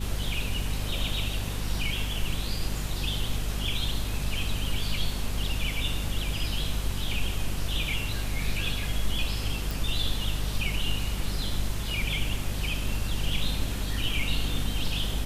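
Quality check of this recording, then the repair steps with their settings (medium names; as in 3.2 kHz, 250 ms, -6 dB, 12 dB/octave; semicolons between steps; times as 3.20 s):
hum 50 Hz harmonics 5 -32 dBFS
9.71 s: pop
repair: de-click; de-hum 50 Hz, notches 5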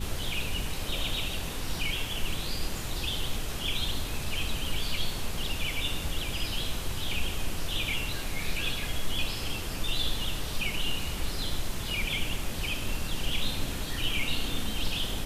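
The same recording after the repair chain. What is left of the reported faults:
nothing left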